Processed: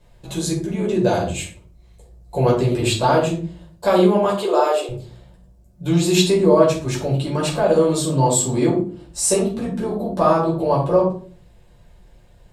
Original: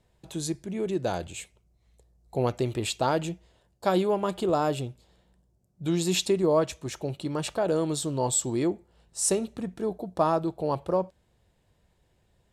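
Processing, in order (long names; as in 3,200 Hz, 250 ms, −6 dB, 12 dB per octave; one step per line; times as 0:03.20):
0:04.23–0:04.89: Butterworth high-pass 350 Hz 48 dB per octave
in parallel at −0.5 dB: downward compressor, threshold −38 dBFS, peak gain reduction 18.5 dB
on the sum: rectangular room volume 300 cubic metres, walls furnished, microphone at 5.1 metres
level −1.5 dB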